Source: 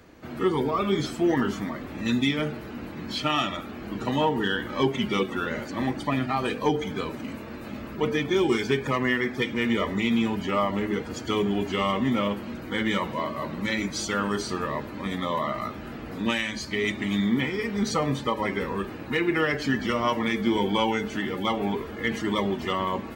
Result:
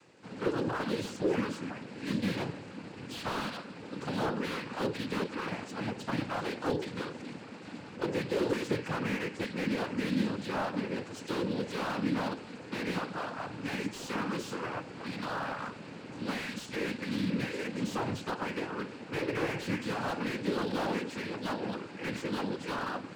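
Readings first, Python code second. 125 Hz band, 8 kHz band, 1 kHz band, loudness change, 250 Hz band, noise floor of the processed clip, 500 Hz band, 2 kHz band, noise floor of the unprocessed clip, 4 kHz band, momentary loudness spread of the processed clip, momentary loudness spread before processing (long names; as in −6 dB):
−6.5 dB, −8.0 dB, −8.5 dB, −8.0 dB, −8.0 dB, −47 dBFS, −7.5 dB, −8.0 dB, −38 dBFS, −9.5 dB, 8 LU, 8 LU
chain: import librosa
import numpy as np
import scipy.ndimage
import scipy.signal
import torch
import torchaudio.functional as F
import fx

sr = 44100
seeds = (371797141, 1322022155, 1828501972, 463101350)

y = fx.noise_vocoder(x, sr, seeds[0], bands=8)
y = fx.high_shelf(y, sr, hz=3600.0, db=5.5)
y = fx.slew_limit(y, sr, full_power_hz=72.0)
y = F.gain(torch.from_numpy(y), -7.0).numpy()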